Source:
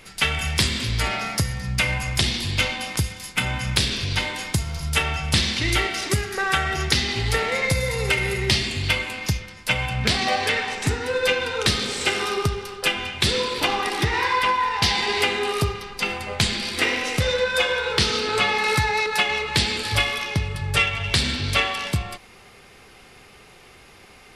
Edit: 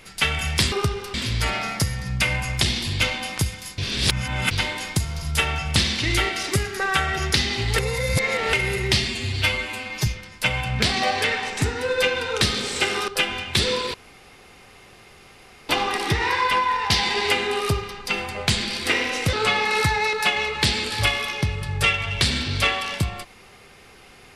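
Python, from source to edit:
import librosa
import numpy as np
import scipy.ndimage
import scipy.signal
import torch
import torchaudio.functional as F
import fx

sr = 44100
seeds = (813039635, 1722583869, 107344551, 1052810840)

y = fx.edit(x, sr, fx.reverse_span(start_s=3.36, length_s=0.73),
    fx.reverse_span(start_s=7.36, length_s=0.75),
    fx.stretch_span(start_s=8.66, length_s=0.66, factor=1.5),
    fx.move(start_s=12.33, length_s=0.42, to_s=0.72),
    fx.insert_room_tone(at_s=13.61, length_s=1.75),
    fx.cut(start_s=17.25, length_s=1.01), tone=tone)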